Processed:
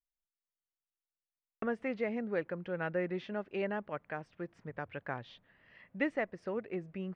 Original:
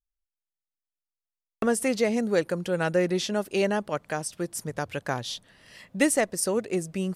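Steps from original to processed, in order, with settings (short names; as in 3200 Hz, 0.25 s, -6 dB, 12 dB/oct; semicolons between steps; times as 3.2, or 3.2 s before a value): ladder low-pass 2700 Hz, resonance 30%; gain -4 dB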